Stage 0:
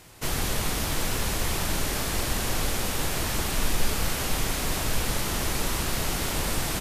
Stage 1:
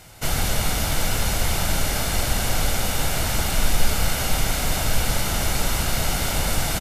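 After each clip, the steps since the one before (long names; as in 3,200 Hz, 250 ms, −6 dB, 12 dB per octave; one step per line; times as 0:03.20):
comb filter 1.4 ms, depth 40%
level +3.5 dB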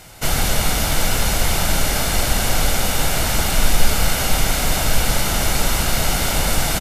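parametric band 93 Hz −3.5 dB 0.99 octaves
level +4.5 dB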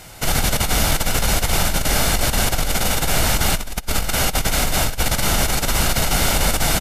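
compressor whose output falls as the input rises −17 dBFS, ratio −0.5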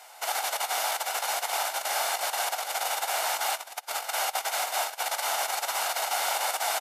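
four-pole ladder high-pass 660 Hz, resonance 50%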